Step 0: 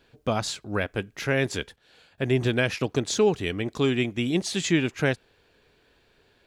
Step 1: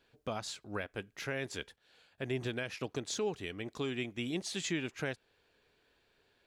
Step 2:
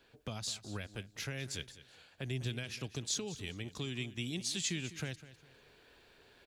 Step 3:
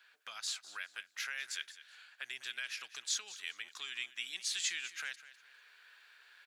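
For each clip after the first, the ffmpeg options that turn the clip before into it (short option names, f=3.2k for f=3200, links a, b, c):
-af "lowshelf=f=330:g=-5,alimiter=limit=-17dB:level=0:latency=1:release=264,volume=-8dB"
-filter_complex "[0:a]acrossover=split=180|3000[a][b][c];[b]acompressor=threshold=-56dB:ratio=2.5[d];[a][d][c]amix=inputs=3:normalize=0,aecho=1:1:202|404|606:0.168|0.0436|0.0113,areverse,acompressor=mode=upward:threshold=-60dB:ratio=2.5,areverse,volume=4.5dB"
-af "highpass=f=1.5k:t=q:w=2.2"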